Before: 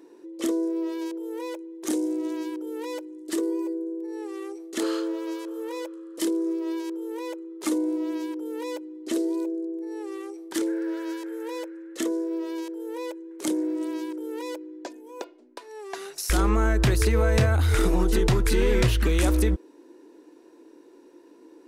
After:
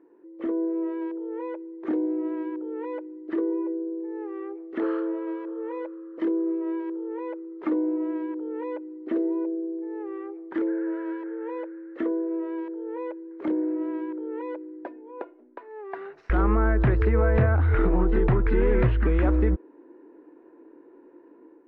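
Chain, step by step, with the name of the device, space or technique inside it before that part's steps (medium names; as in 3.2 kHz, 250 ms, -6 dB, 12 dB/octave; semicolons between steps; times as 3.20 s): action camera in a waterproof case (low-pass 1.9 kHz 24 dB/octave; level rider gain up to 7 dB; trim -6.5 dB; AAC 64 kbps 32 kHz)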